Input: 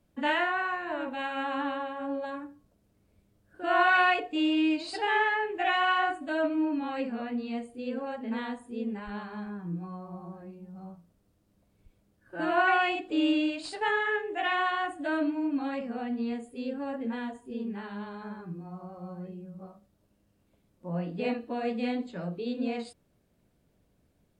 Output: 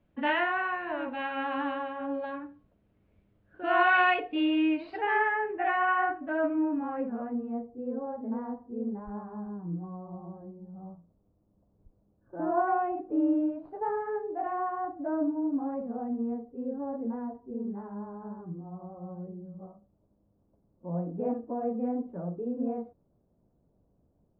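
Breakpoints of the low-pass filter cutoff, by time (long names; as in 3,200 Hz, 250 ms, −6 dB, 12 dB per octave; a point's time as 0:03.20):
low-pass filter 24 dB per octave
0:04.32 3,100 Hz
0:05.42 1,900 Hz
0:06.51 1,900 Hz
0:07.67 1,000 Hz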